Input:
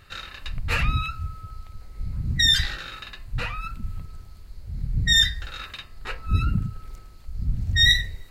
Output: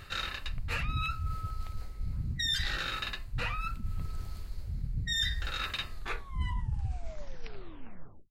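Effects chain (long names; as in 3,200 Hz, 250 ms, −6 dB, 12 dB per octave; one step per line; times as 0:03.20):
turntable brake at the end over 2.42 s
reversed playback
downward compressor 5 to 1, threshold −36 dBFS, peak gain reduction 19.5 dB
reversed playback
level +5 dB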